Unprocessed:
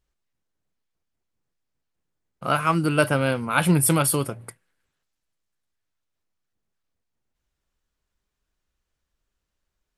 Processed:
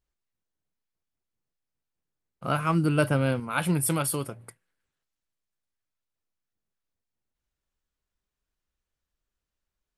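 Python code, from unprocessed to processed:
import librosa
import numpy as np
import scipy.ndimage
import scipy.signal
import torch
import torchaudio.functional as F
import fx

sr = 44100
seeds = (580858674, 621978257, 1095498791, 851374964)

y = fx.low_shelf(x, sr, hz=360.0, db=8.0, at=(2.44, 3.4))
y = y * librosa.db_to_amplitude(-6.5)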